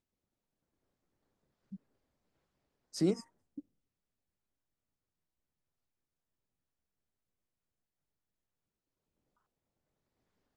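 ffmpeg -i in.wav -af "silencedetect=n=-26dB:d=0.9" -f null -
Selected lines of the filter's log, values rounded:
silence_start: 0.00
silence_end: 3.01 | silence_duration: 3.01
silence_start: 3.12
silence_end: 10.56 | silence_duration: 7.45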